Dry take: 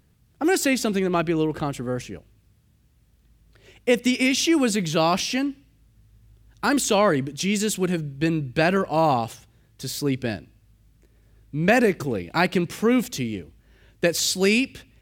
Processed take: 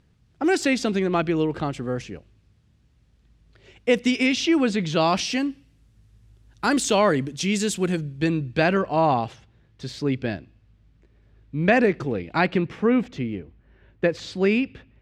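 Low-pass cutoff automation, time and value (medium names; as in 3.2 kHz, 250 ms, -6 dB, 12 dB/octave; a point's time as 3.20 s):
4.14 s 5.8 kHz
4.64 s 3.4 kHz
5.40 s 9 kHz
7.94 s 9 kHz
9.01 s 3.6 kHz
12.38 s 3.6 kHz
12.81 s 2.1 kHz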